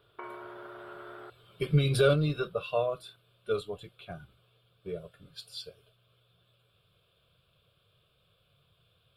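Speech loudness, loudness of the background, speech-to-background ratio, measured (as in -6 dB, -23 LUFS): -30.5 LUFS, -46.0 LUFS, 15.5 dB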